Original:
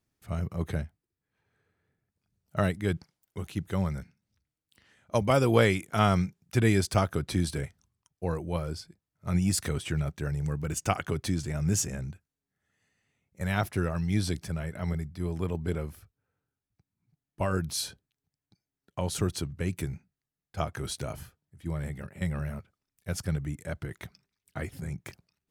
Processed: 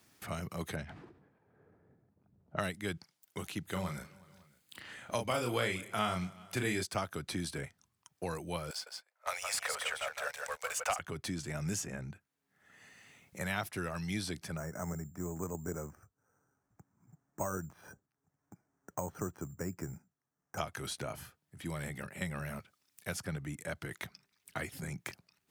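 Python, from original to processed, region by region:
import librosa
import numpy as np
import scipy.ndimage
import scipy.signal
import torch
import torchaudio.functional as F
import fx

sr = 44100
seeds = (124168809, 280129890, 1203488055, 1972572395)

y = fx.chain(x, sr, fx.env_lowpass(base_hz=610.0, full_db=-25.0),
    fx.sustainer(db_per_s=86.0), at=(0.76, 2.7))
y = fx.chain(y, sr, fx.notch(hz=5600.0, q=7.5),
    fx.doubler(ms=33.0, db=-4.5),
    fx.echo_feedback(ms=184, feedback_pct=44, wet_db=-23.5), at=(3.63, 6.83))
y = fx.chain(y, sr, fx.steep_highpass(hz=490.0, slope=72),
    fx.leveller(passes=2),
    fx.echo_single(ms=161, db=-6.0), at=(8.7, 10.99))
y = fx.chain(y, sr, fx.lowpass(hz=1500.0, slope=24),
    fx.resample_bad(factor=6, down='filtered', up='hold'), at=(14.57, 20.58))
y = fx.highpass(y, sr, hz=320.0, slope=6)
y = fx.peak_eq(y, sr, hz=440.0, db=-3.5, octaves=1.1)
y = fx.band_squash(y, sr, depth_pct=70)
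y = y * librosa.db_to_amplitude(-2.5)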